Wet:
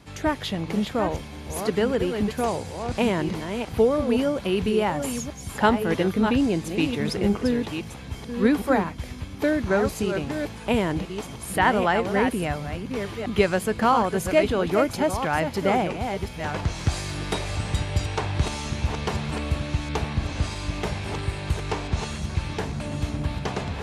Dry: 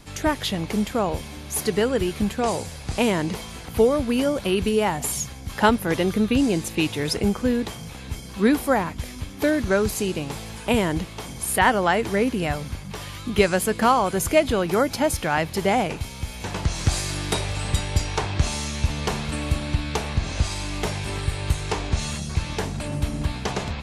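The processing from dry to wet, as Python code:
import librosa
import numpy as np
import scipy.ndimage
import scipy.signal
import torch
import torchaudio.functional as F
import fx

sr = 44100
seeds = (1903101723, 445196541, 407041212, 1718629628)

y = fx.reverse_delay(x, sr, ms=663, wet_db=-7)
y = scipy.signal.sosfilt(scipy.signal.butter(2, 49.0, 'highpass', fs=sr, output='sos'), y)
y = fx.high_shelf(y, sr, hz=5200.0, db=-9.5)
y = y * 10.0 ** (-1.5 / 20.0)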